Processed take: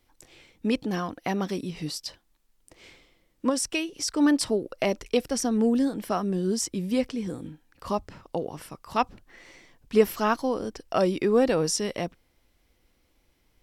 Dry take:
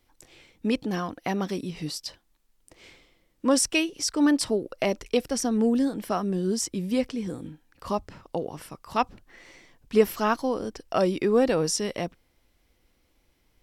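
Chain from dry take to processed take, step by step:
0:03.49–0:04.08: downward compressor 2 to 1, threshold −27 dBFS, peak gain reduction 6.5 dB

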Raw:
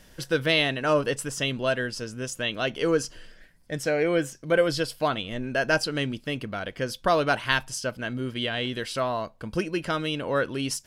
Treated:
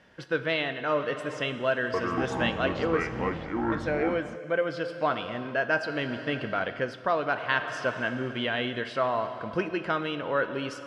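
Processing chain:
low-pass filter 1,700 Hz 12 dB per octave
dense smooth reverb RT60 2.8 s, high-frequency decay 0.95×, DRR 9 dB
speech leveller 0.5 s
high-pass filter 61 Hz
spectral tilt +2.5 dB per octave
0:01.70–0:04.36: delay with pitch and tempo change per echo 236 ms, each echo −6 semitones, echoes 3

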